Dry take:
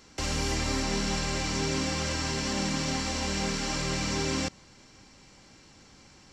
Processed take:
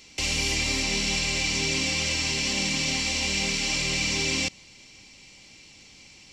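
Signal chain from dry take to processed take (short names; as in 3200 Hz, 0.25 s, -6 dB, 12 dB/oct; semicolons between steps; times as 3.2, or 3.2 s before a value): resonant high shelf 1900 Hz +7 dB, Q 3; gain -1.5 dB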